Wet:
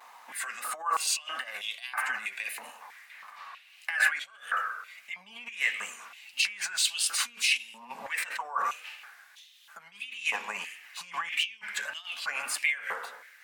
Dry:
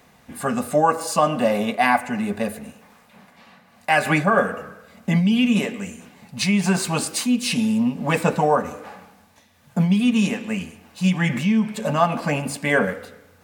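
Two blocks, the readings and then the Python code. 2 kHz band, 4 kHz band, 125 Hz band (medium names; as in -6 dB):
-4.0 dB, -1.5 dB, under -40 dB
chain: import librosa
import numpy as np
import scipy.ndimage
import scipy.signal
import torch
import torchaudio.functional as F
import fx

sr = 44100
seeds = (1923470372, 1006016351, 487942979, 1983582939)

y = fx.over_compress(x, sr, threshold_db=-26.0, ratio=-1.0)
y = fx.vibrato(y, sr, rate_hz=1.6, depth_cents=80.0)
y = fx.filter_held_highpass(y, sr, hz=3.1, low_hz=960.0, high_hz=3200.0)
y = y * 10.0 ** (-6.0 / 20.0)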